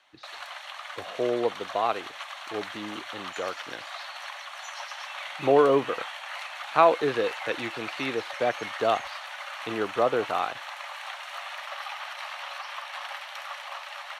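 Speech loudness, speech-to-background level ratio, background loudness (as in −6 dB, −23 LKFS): −27.0 LKFS, 10.0 dB, −37.0 LKFS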